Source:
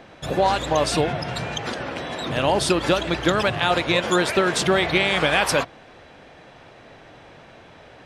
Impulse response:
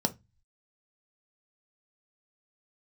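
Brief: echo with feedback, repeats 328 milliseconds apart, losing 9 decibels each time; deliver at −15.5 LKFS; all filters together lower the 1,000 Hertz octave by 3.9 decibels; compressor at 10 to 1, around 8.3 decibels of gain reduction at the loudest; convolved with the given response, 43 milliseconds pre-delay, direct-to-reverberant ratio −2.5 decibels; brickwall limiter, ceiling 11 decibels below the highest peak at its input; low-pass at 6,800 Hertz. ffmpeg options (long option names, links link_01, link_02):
-filter_complex "[0:a]lowpass=6800,equalizer=frequency=1000:width_type=o:gain=-5.5,acompressor=threshold=-24dB:ratio=10,alimiter=limit=-22.5dB:level=0:latency=1,aecho=1:1:328|656|984|1312:0.355|0.124|0.0435|0.0152,asplit=2[link_01][link_02];[1:a]atrim=start_sample=2205,adelay=43[link_03];[link_02][link_03]afir=irnorm=-1:irlink=0,volume=-4dB[link_04];[link_01][link_04]amix=inputs=2:normalize=0,volume=8.5dB"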